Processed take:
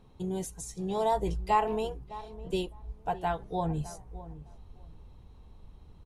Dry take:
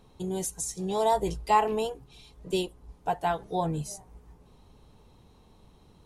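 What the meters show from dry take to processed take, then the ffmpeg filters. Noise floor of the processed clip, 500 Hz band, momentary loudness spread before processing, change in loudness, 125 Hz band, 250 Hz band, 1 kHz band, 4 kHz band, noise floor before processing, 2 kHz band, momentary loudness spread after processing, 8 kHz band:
-54 dBFS, -3.0 dB, 14 LU, -3.0 dB, 0.0 dB, -1.5 dB, -3.0 dB, -5.0 dB, -58 dBFS, -3.5 dB, 17 LU, -8.5 dB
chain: -filter_complex "[0:a]bass=f=250:g=4,treble=f=4k:g=-6,asplit=2[a][b];[b]adelay=608,lowpass=f=1.2k:p=1,volume=-15dB,asplit=2[c][d];[d]adelay=608,lowpass=f=1.2k:p=1,volume=0.18[e];[a][c][e]amix=inputs=3:normalize=0,asubboost=boost=2.5:cutoff=97,volume=-3dB"

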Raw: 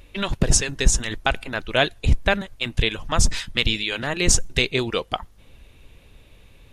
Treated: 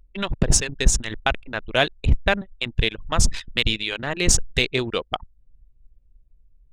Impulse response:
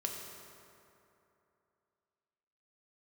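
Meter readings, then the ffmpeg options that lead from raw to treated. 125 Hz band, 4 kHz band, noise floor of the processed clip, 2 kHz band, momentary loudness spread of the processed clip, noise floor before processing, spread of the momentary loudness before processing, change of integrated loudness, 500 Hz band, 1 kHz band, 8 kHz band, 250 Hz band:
-0.5 dB, -0.5 dB, -58 dBFS, -0.5 dB, 8 LU, -51 dBFS, 8 LU, -0.5 dB, -0.5 dB, -0.5 dB, -0.5 dB, -1.0 dB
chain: -af "aeval=exprs='0.75*(cos(1*acos(clip(val(0)/0.75,-1,1)))-cos(1*PI/2))+0.0106*(cos(7*acos(clip(val(0)/0.75,-1,1)))-cos(7*PI/2))':c=same,anlmdn=100"

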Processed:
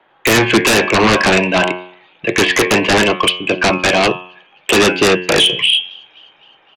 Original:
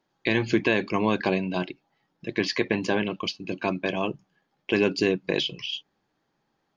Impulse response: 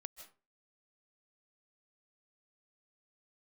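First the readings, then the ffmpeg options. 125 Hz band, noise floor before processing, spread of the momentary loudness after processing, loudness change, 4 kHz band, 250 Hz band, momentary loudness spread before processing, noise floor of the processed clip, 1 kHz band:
+10.0 dB, -75 dBFS, 8 LU, +14.0 dB, +18.0 dB, +9.5 dB, 11 LU, -53 dBFS, +16.0 dB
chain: -filter_complex "[0:a]bandreject=f=90.51:t=h:w=4,bandreject=f=181.02:t=h:w=4,bandreject=f=271.53:t=h:w=4,bandreject=f=362.04:t=h:w=4,bandreject=f=452.55:t=h:w=4,bandreject=f=543.06:t=h:w=4,bandreject=f=633.57:t=h:w=4,bandreject=f=724.08:t=h:w=4,bandreject=f=814.59:t=h:w=4,bandreject=f=905.1:t=h:w=4,bandreject=f=995.61:t=h:w=4,bandreject=f=1.08612k:t=h:w=4,bandreject=f=1.17663k:t=h:w=4,bandreject=f=1.26714k:t=h:w=4,bandreject=f=1.35765k:t=h:w=4,bandreject=f=1.44816k:t=h:w=4,bandreject=f=1.53867k:t=h:w=4,bandreject=f=1.62918k:t=h:w=4,bandreject=f=1.71969k:t=h:w=4,bandreject=f=1.8102k:t=h:w=4,bandreject=f=1.90071k:t=h:w=4,bandreject=f=1.99122k:t=h:w=4,bandreject=f=2.08173k:t=h:w=4,bandreject=f=2.17224k:t=h:w=4,bandreject=f=2.26275k:t=h:w=4,bandreject=f=2.35326k:t=h:w=4,bandreject=f=2.44377k:t=h:w=4,bandreject=f=2.53428k:t=h:w=4,bandreject=f=2.62479k:t=h:w=4,bandreject=f=2.7153k:t=h:w=4,bandreject=f=2.80581k:t=h:w=4,bandreject=f=2.89632k:t=h:w=4,bandreject=f=2.98683k:t=h:w=4,bandreject=f=3.07734k:t=h:w=4,bandreject=f=3.16785k:t=h:w=4,bandreject=f=3.25836k:t=h:w=4,bandreject=f=3.34887k:t=h:w=4,bandreject=f=3.43938k:t=h:w=4,acrossover=split=440|3000[a][b][c];[b]acompressor=threshold=-24dB:ratio=6[d];[a][d][c]amix=inputs=3:normalize=0,highshelf=f=4.1k:t=q:w=3:g=-7.5,acrossover=split=200|410|2700[e][f][g][h];[e]acontrast=36[i];[g]aeval=exprs='0.2*sin(PI/2*5.62*val(0)/0.2)':c=same[j];[h]asplit=8[k][l][m][n][o][p][q][r];[l]adelay=258,afreqshift=-51,volume=-14dB[s];[m]adelay=516,afreqshift=-102,volume=-18.2dB[t];[n]adelay=774,afreqshift=-153,volume=-22.3dB[u];[o]adelay=1032,afreqshift=-204,volume=-26.5dB[v];[p]adelay=1290,afreqshift=-255,volume=-30.6dB[w];[q]adelay=1548,afreqshift=-306,volume=-34.8dB[x];[r]adelay=1806,afreqshift=-357,volume=-38.9dB[y];[k][s][t][u][v][w][x][y]amix=inputs=8:normalize=0[z];[i][f][j][z]amix=inputs=4:normalize=0,volume=5dB"

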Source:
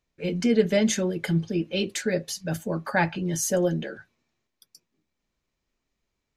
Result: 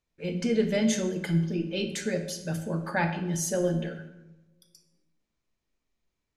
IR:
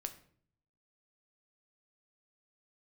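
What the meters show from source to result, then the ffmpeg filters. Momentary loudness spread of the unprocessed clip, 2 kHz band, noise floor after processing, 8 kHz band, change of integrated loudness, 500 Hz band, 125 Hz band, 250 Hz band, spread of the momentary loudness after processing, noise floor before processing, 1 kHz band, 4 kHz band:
9 LU, -4.0 dB, -83 dBFS, -3.5 dB, -3.0 dB, -4.0 dB, -1.0 dB, -2.5 dB, 8 LU, -81 dBFS, -3.5 dB, -3.5 dB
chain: -filter_complex "[1:a]atrim=start_sample=2205,asetrate=23373,aresample=44100[a];[0:a][a]afir=irnorm=-1:irlink=0,volume=-5dB"

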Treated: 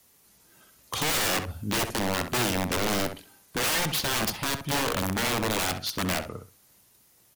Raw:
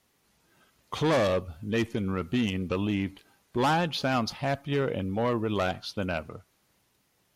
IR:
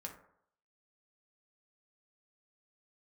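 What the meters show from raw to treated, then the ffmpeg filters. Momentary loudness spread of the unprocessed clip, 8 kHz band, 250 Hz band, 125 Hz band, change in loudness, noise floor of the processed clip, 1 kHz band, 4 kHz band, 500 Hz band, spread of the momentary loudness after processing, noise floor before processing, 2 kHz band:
8 LU, +17.5 dB, -3.0 dB, -2.0 dB, +2.0 dB, -61 dBFS, +0.5 dB, +7.5 dB, -3.5 dB, 7 LU, -71 dBFS, +5.0 dB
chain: -filter_complex "[0:a]acrossover=split=270|3400[a][b][c];[c]crystalizer=i=2:c=0[d];[a][b][d]amix=inputs=3:normalize=0,aeval=exprs='(mod(15.8*val(0)+1,2)-1)/15.8':c=same,asplit=2[e][f];[f]adelay=65,lowpass=f=2.5k:p=1,volume=-8dB,asplit=2[g][h];[h]adelay=65,lowpass=f=2.5k:p=1,volume=0.18,asplit=2[i][j];[j]adelay=65,lowpass=f=2.5k:p=1,volume=0.18[k];[e][g][i][k]amix=inputs=4:normalize=0,volume=3dB"

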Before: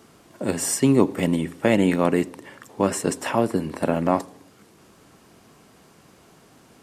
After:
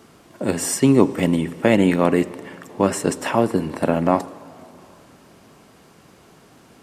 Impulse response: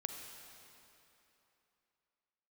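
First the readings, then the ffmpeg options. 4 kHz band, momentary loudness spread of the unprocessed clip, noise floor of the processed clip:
+2.0 dB, 10 LU, -51 dBFS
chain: -filter_complex "[0:a]asplit=2[a][b];[1:a]atrim=start_sample=2205,lowpass=5.9k[c];[b][c]afir=irnorm=-1:irlink=0,volume=-10dB[d];[a][d]amix=inputs=2:normalize=0,volume=1dB"

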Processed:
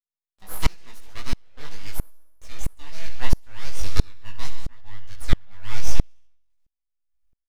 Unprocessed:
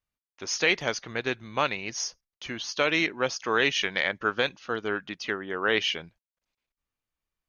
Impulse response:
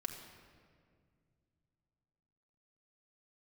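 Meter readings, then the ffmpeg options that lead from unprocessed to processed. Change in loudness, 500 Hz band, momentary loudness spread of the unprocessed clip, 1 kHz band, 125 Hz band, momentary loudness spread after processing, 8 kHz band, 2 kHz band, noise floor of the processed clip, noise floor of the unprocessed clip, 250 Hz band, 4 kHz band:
-5.5 dB, -14.5 dB, 9 LU, -9.0 dB, +12.5 dB, 15 LU, n/a, -13.5 dB, under -85 dBFS, under -85 dBFS, -3.5 dB, -9.0 dB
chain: -filter_complex "[0:a]aecho=1:1:68|136|204|272|340:0.2|0.108|0.0582|0.0314|0.017,flanger=delay=1.4:depth=5.1:regen=23:speed=0.79:shape=sinusoidal,aeval=exprs='abs(val(0))':c=same,asubboost=boost=9:cutoff=68,asplit=2[a][b];[b]adelay=20,volume=-2dB[c];[a][c]amix=inputs=2:normalize=0,asplit=2[d][e];[1:a]atrim=start_sample=2205,afade=t=out:st=0.27:d=0.01,atrim=end_sample=12348,highshelf=f=4.4k:g=9[f];[e][f]afir=irnorm=-1:irlink=0,volume=-6dB[g];[d][g]amix=inputs=2:normalize=0,aeval=exprs='val(0)*pow(10,-29*if(lt(mod(-1.5*n/s,1),2*abs(-1.5)/1000),1-mod(-1.5*n/s,1)/(2*abs(-1.5)/1000),(mod(-1.5*n/s,1)-2*abs(-1.5)/1000)/(1-2*abs(-1.5)/1000))/20)':c=same"

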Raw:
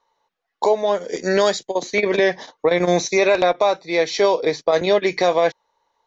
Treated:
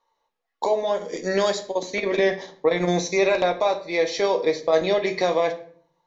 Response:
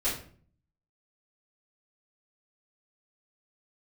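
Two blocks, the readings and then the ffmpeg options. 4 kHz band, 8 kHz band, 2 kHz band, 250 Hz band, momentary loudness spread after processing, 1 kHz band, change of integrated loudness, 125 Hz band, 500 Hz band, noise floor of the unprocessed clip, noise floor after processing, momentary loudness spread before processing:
-4.0 dB, n/a, -4.5 dB, -3.5 dB, 6 LU, -4.5 dB, -4.0 dB, -2.0 dB, -3.5 dB, -77 dBFS, -77 dBFS, 5 LU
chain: -filter_complex "[0:a]bandreject=f=1.5k:w=16,asplit=2[a][b];[1:a]atrim=start_sample=2205,asetrate=39690,aresample=44100[c];[b][c]afir=irnorm=-1:irlink=0,volume=-13.5dB[d];[a][d]amix=inputs=2:normalize=0,volume=-6dB"

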